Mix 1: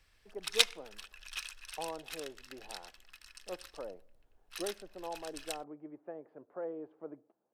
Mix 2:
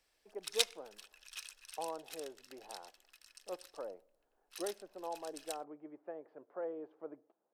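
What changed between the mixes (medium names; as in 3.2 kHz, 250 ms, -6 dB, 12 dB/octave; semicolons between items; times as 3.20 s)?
background -9.0 dB; master: add tone controls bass -10 dB, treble +7 dB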